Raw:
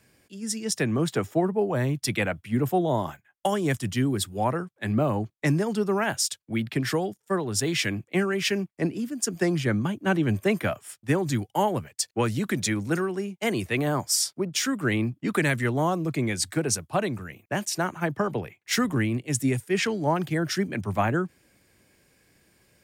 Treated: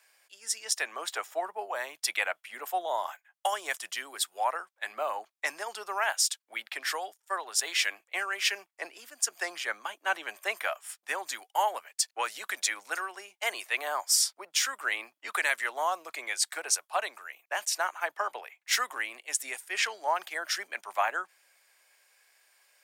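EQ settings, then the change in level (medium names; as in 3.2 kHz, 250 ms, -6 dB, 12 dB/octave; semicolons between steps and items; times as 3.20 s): high-pass 710 Hz 24 dB/octave; 0.0 dB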